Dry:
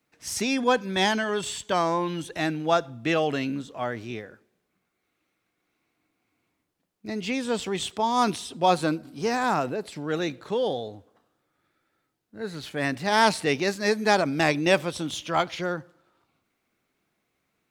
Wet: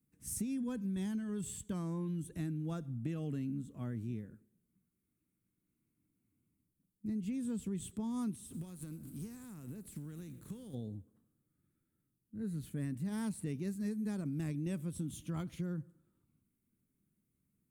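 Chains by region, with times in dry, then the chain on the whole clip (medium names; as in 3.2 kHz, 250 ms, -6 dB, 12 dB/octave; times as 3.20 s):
8.46–10.73 s: spectral contrast reduction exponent 0.67 + compression, threshold -37 dBFS
whole clip: FFT filter 210 Hz 0 dB, 750 Hz -29 dB, 1.1 kHz -23 dB, 5.2 kHz -25 dB, 9 kHz -5 dB; compression, threshold -37 dBFS; trim +2 dB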